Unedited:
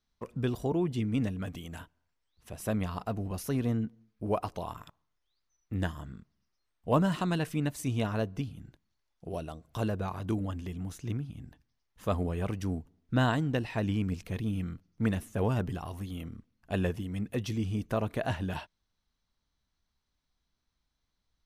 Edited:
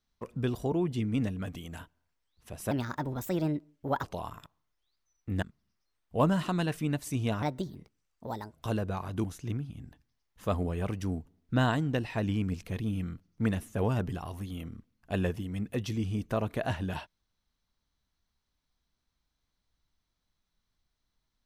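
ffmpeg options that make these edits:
ffmpeg -i in.wav -filter_complex "[0:a]asplit=7[link_01][link_02][link_03][link_04][link_05][link_06][link_07];[link_01]atrim=end=2.714[link_08];[link_02]atrim=start=2.71:end=4.47,asetpts=PTS-STARTPTS,asetrate=58653,aresample=44100[link_09];[link_03]atrim=start=4.466:end=5.862[link_10];[link_04]atrim=start=6.148:end=8.154[link_11];[link_05]atrim=start=8.15:end=9.63,asetpts=PTS-STARTPTS,asetrate=59535,aresample=44100[link_12];[link_06]atrim=start=9.626:end=10.352[link_13];[link_07]atrim=start=10.838[link_14];[link_08][link_09]acrossfade=duration=0.004:curve1=hsin:curve2=hsin[link_15];[link_15][link_10]acrossfade=duration=0.004:curve1=hsin:curve2=hsin[link_16];[link_16][link_11]acrossfade=duration=0.004:curve1=hsin:curve2=hsin[link_17];[link_17][link_12]acrossfade=duration=0.004:curve1=hsin:curve2=hsin[link_18];[link_18][link_13]acrossfade=duration=0.004:curve1=hsin:curve2=hsin[link_19];[link_19][link_14]acrossfade=duration=0.004:curve1=hsin:curve2=hsin" out.wav

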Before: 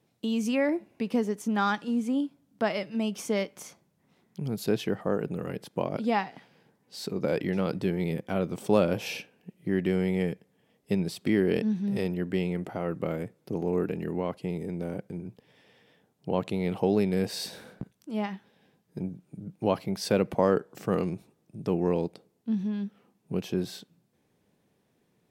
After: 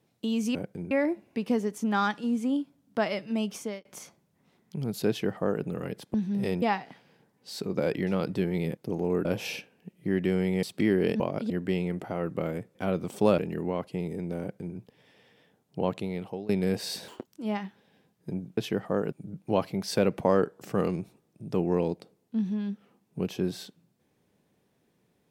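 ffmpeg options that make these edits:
ffmpeg -i in.wav -filter_complex "[0:a]asplit=18[link_01][link_02][link_03][link_04][link_05][link_06][link_07][link_08][link_09][link_10][link_11][link_12][link_13][link_14][link_15][link_16][link_17][link_18];[link_01]atrim=end=0.552[link_19];[link_02]atrim=start=14.898:end=15.262[link_20];[link_03]atrim=start=0.548:end=3.49,asetpts=PTS-STARTPTS,afade=type=out:start_time=2.592:duration=0.35[link_21];[link_04]atrim=start=3.49:end=5.782,asetpts=PTS-STARTPTS,afade=type=in:duration=0.004:curve=hsin[link_22];[link_05]atrim=start=11.668:end=12.152[link_23];[link_06]atrim=start=6.078:end=8.232[link_24];[link_07]atrim=start=13.398:end=13.882[link_25];[link_08]atrim=start=8.858:end=10.242[link_26];[link_09]atrim=start=11.098:end=11.672[link_27];[link_10]atrim=start=5.778:end=6.082[link_28];[link_11]atrim=start=12.148:end=13.402[link_29];[link_12]atrim=start=8.228:end=8.862[link_30];[link_13]atrim=start=13.878:end=16.99,asetpts=PTS-STARTPTS,afade=type=out:start_time=2.462:duration=0.65:silence=0.0944061[link_31];[link_14]atrim=start=16.99:end=17.584,asetpts=PTS-STARTPTS,afade=type=in:duration=0.004:curve=hsin:silence=0.0944061[link_32];[link_15]atrim=start=17.58:end=17.96,asetpts=PTS-STARTPTS,asetrate=86436,aresample=44100[link_33];[link_16]atrim=start=17.956:end=19.262[link_34];[link_17]atrim=start=4.728:end=5.282[link_35];[link_18]atrim=start=19.258[link_36];[link_19][link_20]acrossfade=duration=0.004:curve1=hsin:curve2=hsin[link_37];[link_21][link_22]concat=n=2:v=0:a=1[link_38];[link_37][link_38]acrossfade=duration=0.004:curve1=hsin:curve2=hsin[link_39];[link_39][link_23]acrossfade=duration=0.004:curve1=hsin:curve2=hsin[link_40];[link_40][link_24]acrossfade=duration=0.004:curve1=hsin:curve2=hsin[link_41];[link_41][link_25]acrossfade=duration=0.004:curve1=hsin:curve2=hsin[link_42];[link_42][link_26]acrossfade=duration=0.004:curve1=hsin:curve2=hsin[link_43];[link_43][link_27]acrossfade=duration=0.004:curve1=hsin:curve2=hsin[link_44];[link_44][link_28]acrossfade=duration=0.004:curve1=hsin:curve2=hsin[link_45];[link_45][link_29]acrossfade=duration=0.004:curve1=hsin:curve2=hsin[link_46];[link_46][link_30]acrossfade=duration=0.004:curve1=hsin:curve2=hsin[link_47];[link_31][link_32]concat=n=2:v=0:a=1[link_48];[link_47][link_48]acrossfade=duration=0.004:curve1=hsin:curve2=hsin[link_49];[link_49][link_33]acrossfade=duration=0.004:curve1=hsin:curve2=hsin[link_50];[link_50][link_34]acrossfade=duration=0.004:curve1=hsin:curve2=hsin[link_51];[link_51][link_35]acrossfade=duration=0.004:curve1=hsin:curve2=hsin[link_52];[link_52][link_36]acrossfade=duration=0.004:curve1=hsin:curve2=hsin" out.wav

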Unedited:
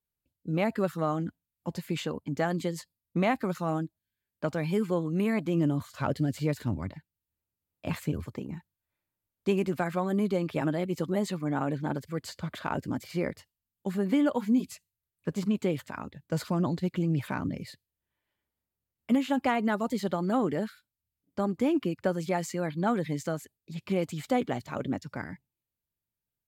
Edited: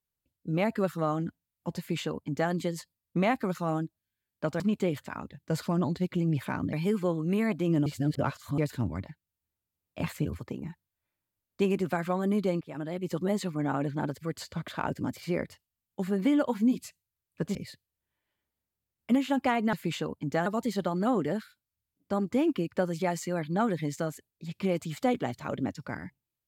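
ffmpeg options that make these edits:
ffmpeg -i in.wav -filter_complex "[0:a]asplit=9[link_01][link_02][link_03][link_04][link_05][link_06][link_07][link_08][link_09];[link_01]atrim=end=4.602[link_10];[link_02]atrim=start=15.418:end=17.552[link_11];[link_03]atrim=start=4.598:end=5.732[link_12];[link_04]atrim=start=5.728:end=6.452,asetpts=PTS-STARTPTS,areverse[link_13];[link_05]atrim=start=6.448:end=10.48,asetpts=PTS-STARTPTS,afade=type=out:start_time=4.028:duration=0.004:curve=hsin:silence=0.1[link_14];[link_06]atrim=start=10.48:end=15.422,asetpts=PTS-STARTPTS,afade=type=in:duration=0.58:silence=0.1[link_15];[link_07]atrim=start=17.548:end=19.732[link_16];[link_08]atrim=start=1.778:end=2.512[link_17];[link_09]atrim=start=19.728[link_18];[link_10][link_11]acrossfade=duration=0.004:curve1=hsin:curve2=hsin[link_19];[link_19][link_12]acrossfade=duration=0.004:curve1=hsin:curve2=hsin[link_20];[link_20][link_13]acrossfade=duration=0.004:curve1=hsin:curve2=hsin[link_21];[link_14][link_15]concat=n=2:v=0:a=1[link_22];[link_21][link_22]acrossfade=duration=0.004:curve1=hsin:curve2=hsin[link_23];[link_23][link_16]acrossfade=duration=0.004:curve1=hsin:curve2=hsin[link_24];[link_24][link_17]acrossfade=duration=0.004:curve1=hsin:curve2=hsin[link_25];[link_25][link_18]acrossfade=duration=0.004:curve1=hsin:curve2=hsin" out.wav

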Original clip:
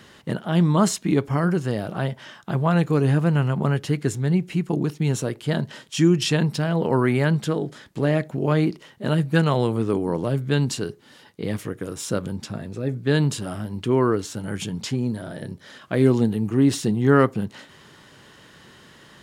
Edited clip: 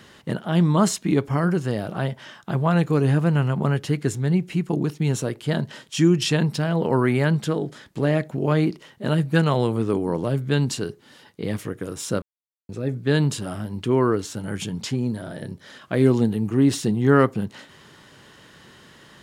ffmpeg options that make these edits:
ffmpeg -i in.wav -filter_complex "[0:a]asplit=3[link_01][link_02][link_03];[link_01]atrim=end=12.22,asetpts=PTS-STARTPTS,afade=type=out:start_time=12.216:duration=0.004:curve=hsin[link_04];[link_02]atrim=start=12.22:end=12.69,asetpts=PTS-STARTPTS,volume=0[link_05];[link_03]atrim=start=12.69,asetpts=PTS-STARTPTS,afade=type=in:duration=0.004:curve=hsin[link_06];[link_04][link_05][link_06]concat=n=3:v=0:a=1" out.wav

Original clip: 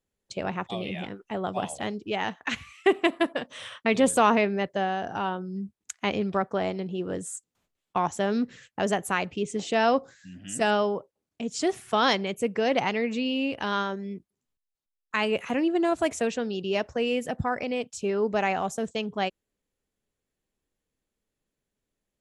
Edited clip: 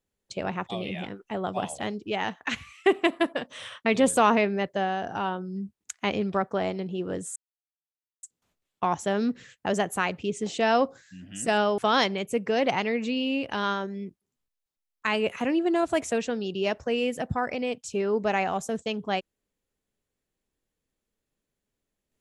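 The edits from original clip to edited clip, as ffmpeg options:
ffmpeg -i in.wav -filter_complex "[0:a]asplit=3[link_01][link_02][link_03];[link_01]atrim=end=7.36,asetpts=PTS-STARTPTS,afade=type=out:start_time=7.356:duration=0.004:curve=hsin,apad=pad_dur=0.87[link_04];[link_02]atrim=start=7.36:end=10.912,asetpts=PTS-STARTPTS,afade=type=in:duration=0.004:curve=hsin[link_05];[link_03]atrim=start=11.868[link_06];[link_04][link_05]concat=n=2:v=0:a=1[link_07];[link_07][link_06]acrossfade=duration=0.004:curve1=hsin:curve2=hsin" out.wav

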